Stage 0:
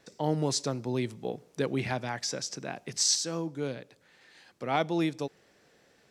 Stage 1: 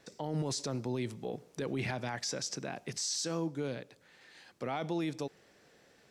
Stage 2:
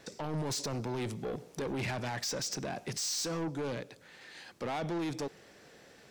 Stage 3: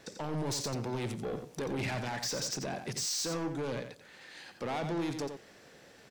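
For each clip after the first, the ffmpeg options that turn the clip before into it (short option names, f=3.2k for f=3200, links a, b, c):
-af "alimiter=level_in=2.5dB:limit=-24dB:level=0:latency=1:release=19,volume=-2.5dB"
-af "asoftclip=type=tanh:threshold=-38dB,volume=6.5dB"
-af "aecho=1:1:88:0.398"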